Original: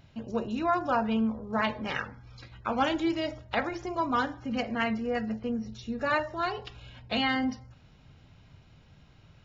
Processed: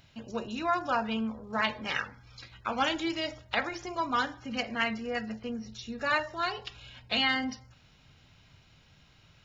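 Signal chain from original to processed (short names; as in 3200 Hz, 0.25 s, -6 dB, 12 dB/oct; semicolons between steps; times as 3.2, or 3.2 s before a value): tilt shelf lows -5.5 dB, about 1300 Hz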